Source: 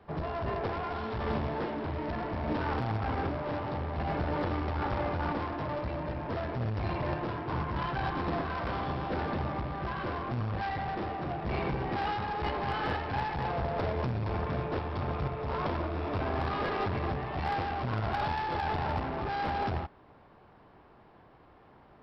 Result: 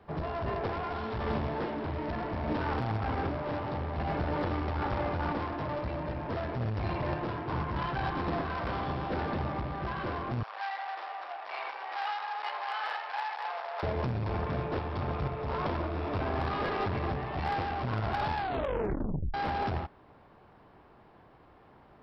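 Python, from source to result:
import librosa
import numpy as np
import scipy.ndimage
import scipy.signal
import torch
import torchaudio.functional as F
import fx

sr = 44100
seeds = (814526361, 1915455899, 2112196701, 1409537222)

y = fx.highpass(x, sr, hz=720.0, slope=24, at=(10.43, 13.83))
y = fx.edit(y, sr, fx.tape_stop(start_s=18.34, length_s=1.0), tone=tone)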